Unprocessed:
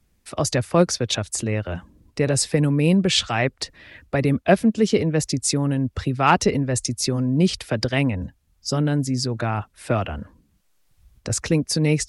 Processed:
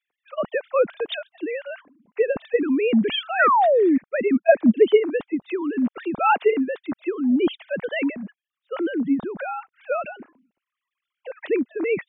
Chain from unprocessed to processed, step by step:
three sine waves on the formant tracks
sound drawn into the spectrogram fall, 0:03.39–0:03.98, 250–1,600 Hz −15 dBFS
level −1.5 dB

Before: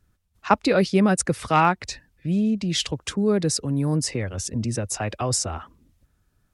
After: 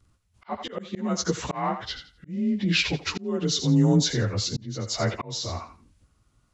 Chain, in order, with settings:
partials spread apart or drawn together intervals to 90%
feedback echo with a high-pass in the loop 84 ms, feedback 21%, high-pass 790 Hz, level −10.5 dB
volume swells 513 ms
level +4.5 dB

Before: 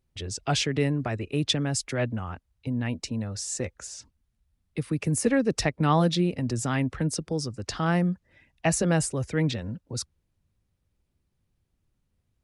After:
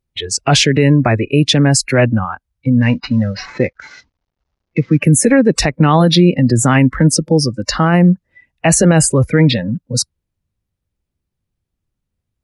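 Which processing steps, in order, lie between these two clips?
0:02.82–0:05.03: variable-slope delta modulation 32 kbit/s
noise reduction from a noise print of the clip's start 19 dB
boost into a limiter +18 dB
level −1 dB

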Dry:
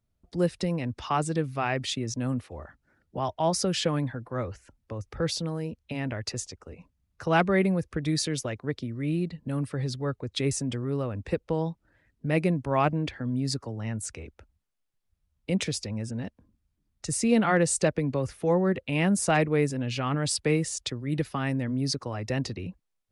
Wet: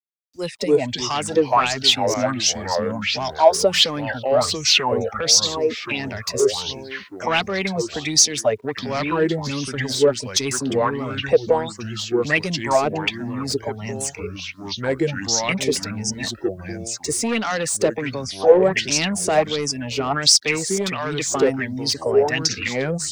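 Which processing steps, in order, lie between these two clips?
noise reduction from a noise print of the clip's start 20 dB
delay with pitch and tempo change per echo 209 ms, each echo −3 semitones, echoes 3, each echo −6 dB
in parallel at +2.5 dB: downward compressor 6 to 1, threshold −34 dBFS, peak gain reduction 15.5 dB
on the sum: downward expander −32 dBFS
parametric band 6,100 Hz +5 dB 1.4 octaves
automatic gain control gain up to 11.5 dB
bit reduction 10 bits
high-pass filter 76 Hz
low-shelf EQ 170 Hz −7 dB
soft clipping −10.5 dBFS, distortion −15 dB
auto-filter bell 1.4 Hz 390–6,100 Hz +17 dB
level −7 dB

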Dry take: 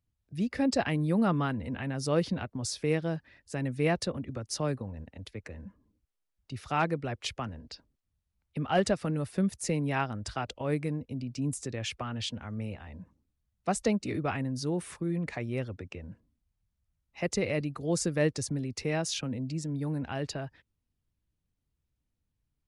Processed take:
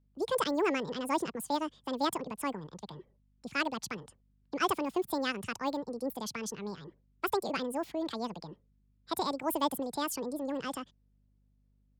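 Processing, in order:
low-pass that shuts in the quiet parts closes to 2,300 Hz, open at −24 dBFS
change of speed 1.89×
mains hum 50 Hz, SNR 34 dB
level −2.5 dB

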